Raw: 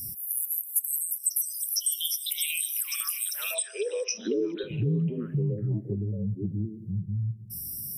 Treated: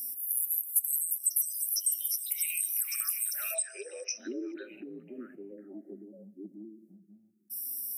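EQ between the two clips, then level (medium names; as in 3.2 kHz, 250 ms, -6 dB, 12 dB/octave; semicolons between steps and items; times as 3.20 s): Bessel high-pass 410 Hz, order 8; dynamic bell 860 Hz, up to -3 dB, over -49 dBFS, Q 1.5; static phaser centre 680 Hz, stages 8; 0.0 dB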